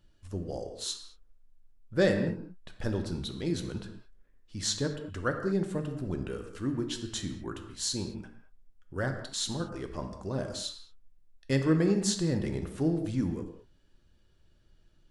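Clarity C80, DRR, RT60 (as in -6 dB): 9.0 dB, 5.0 dB, not exponential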